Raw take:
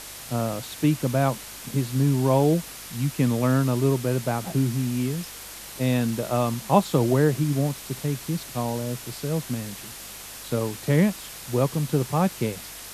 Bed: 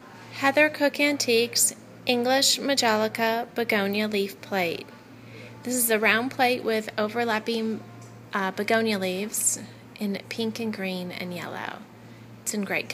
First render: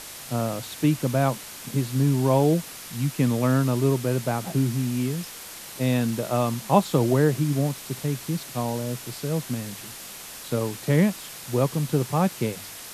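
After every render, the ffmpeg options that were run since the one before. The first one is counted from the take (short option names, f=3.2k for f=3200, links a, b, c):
-af "bandreject=f=50:t=h:w=4,bandreject=f=100:t=h:w=4"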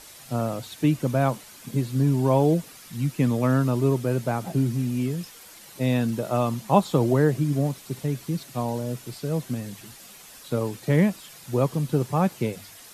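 -af "afftdn=nr=9:nf=-40"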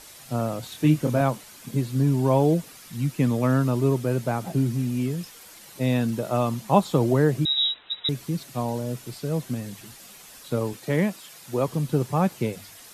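-filter_complex "[0:a]asettb=1/sr,asplit=3[a][b][c];[a]atrim=end=0.604[d];[b]atrim=start=0.6:end=1.21,asetpts=PTS-STARTPTS,afade=t=in:d=0.004:c=qsin,afade=t=out:st=0.606:d=0.004:c=qsin,asplit=2[e][f];[f]adelay=26,volume=-5dB[g];[e][g]amix=inputs=2:normalize=0,atrim=end_sample=26901[h];[c]atrim=start=1.206[i];[d][h]acrossfade=d=0.004:c1=hsin:c2=qsin[j];[j][i]acrossfade=d=0.004:c1=qsin:c2=hsin,asettb=1/sr,asplit=3[k][l][m];[k]atrim=end=7.454[n];[l]atrim=start=7.45:end=8.09,asetpts=PTS-STARTPTS,afade=t=in:d=0.004:c=qsin,afade=t=out:st=0.636:d=0.004:c=qsin,lowpass=f=3.4k:t=q:w=0.5098,lowpass=f=3.4k:t=q:w=0.6013,lowpass=f=3.4k:t=q:w=0.9,lowpass=f=3.4k:t=q:w=2.563,afreqshift=-4000[o];[m]atrim=start=8.086[p];[n][o]acrossfade=d=0.004:c1=hsin:c2=qsin[q];[q][p]acrossfade=d=0.004:c1=qsin:c2=hsin,asettb=1/sr,asplit=3[r][s][t];[r]atrim=end=10.734[u];[s]atrim=start=10.73:end=11.68,asetpts=PTS-STARTPTS,afade=t=in:d=0.004:c=qsin,afade=t=out:st=0.946:d=0.004:c=qsin,highpass=f=230:p=1[v];[t]atrim=start=11.676[w];[u][v]acrossfade=d=0.004:c1=hsin:c2=qsin[x];[x][w]acrossfade=d=0.004:c1=qsin:c2=hsin"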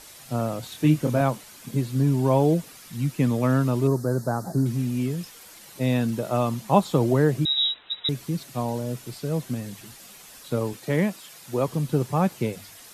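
-filter_complex "[0:a]asettb=1/sr,asplit=3[a][b][c];[a]atrim=end=3.874[d];[b]atrim=start=3.87:end=4.66,asetpts=PTS-STARTPTS,afade=t=in:d=0.004:c=qsin,afade=t=out:st=0.786:d=0.004:c=qsin,asuperstop=centerf=2700:order=8:qfactor=1.1[e];[c]atrim=start=4.656[f];[d][e]acrossfade=d=0.004:c1=hsin:c2=qsin[g];[g][f]acrossfade=d=0.004:c1=qsin:c2=hsin"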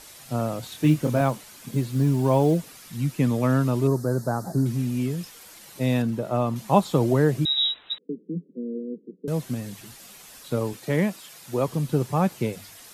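-filter_complex "[0:a]asettb=1/sr,asplit=3[a][b][c];[a]atrim=end=0.574[d];[b]atrim=start=0.57:end=2.6,asetpts=PTS-STARTPTS,afade=t=in:d=0.004:c=qsin,afade=t=out:st=2.026:d=0.004:c=qsin,acrusher=bits=9:mode=log:mix=0:aa=0.000001[e];[c]atrim=start=2.596[f];[d][e]acrossfade=d=0.004:c1=hsin:c2=qsin[g];[g][f]acrossfade=d=0.004:c1=qsin:c2=hsin,asettb=1/sr,asplit=3[h][i][j];[h]atrim=end=6.024[k];[i]atrim=start=6.02:end=6.56,asetpts=PTS-STARTPTS,afade=t=in:d=0.004:c=qsin,afade=t=out:st=0.536:d=0.004:c=qsin,highshelf=f=2.6k:g=-9.5[l];[j]atrim=start=6.556[m];[k][l]acrossfade=d=0.004:c1=hsin:c2=qsin[n];[n][m]acrossfade=d=0.004:c1=qsin:c2=hsin,asettb=1/sr,asplit=3[o][p][q];[o]atrim=end=7.984[r];[p]atrim=start=7.98:end=9.28,asetpts=PTS-STARTPTS,afade=t=in:d=0.004:c=qsin,afade=t=out:st=1.296:d=0.004:c=qsin,asuperpass=centerf=290:order=20:qfactor=0.87[s];[q]atrim=start=9.276[t];[r][s]acrossfade=d=0.004:c1=hsin:c2=qsin[u];[u][t]acrossfade=d=0.004:c1=qsin:c2=hsin"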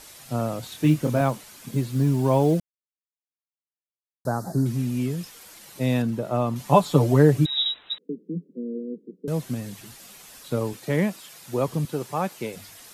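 -filter_complex "[0:a]asettb=1/sr,asplit=3[a][b][c];[a]atrim=end=6.594[d];[b]atrim=start=6.59:end=7.66,asetpts=PTS-STARTPTS,afade=t=in:d=0.004:c=qsin,afade=t=out:st=1.066:d=0.004:c=qsin,aecho=1:1:6.9:0.77,atrim=end_sample=47187[e];[c]atrim=start=7.656[f];[d][e]acrossfade=d=0.004:c1=hsin:c2=qsin[g];[g][f]acrossfade=d=0.004:c1=qsin:c2=hsin,asettb=1/sr,asplit=3[h][i][j];[h]atrim=end=11.854[k];[i]atrim=start=11.85:end=12.54,asetpts=PTS-STARTPTS,afade=t=in:d=0.004:c=qsin,afade=t=out:st=0.686:d=0.004:c=qsin,highpass=f=450:p=1[l];[j]atrim=start=12.536[m];[k][l]acrossfade=d=0.004:c1=hsin:c2=qsin[n];[n][m]acrossfade=d=0.004:c1=qsin:c2=hsin,asplit=3[o][p][q];[o]atrim=end=2.6,asetpts=PTS-STARTPTS,afade=t=out:st=2.596:d=0.004:c=hsin[r];[p]atrim=start=2.6:end=4.25,asetpts=PTS-STARTPTS,volume=0[s];[q]atrim=start=4.25,asetpts=PTS-STARTPTS,afade=t=in:d=0.004:c=hsin[t];[r][s][t]concat=n=3:v=0:a=1"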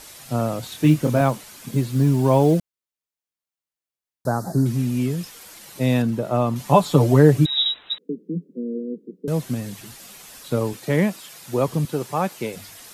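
-af "volume=3.5dB,alimiter=limit=-3dB:level=0:latency=1"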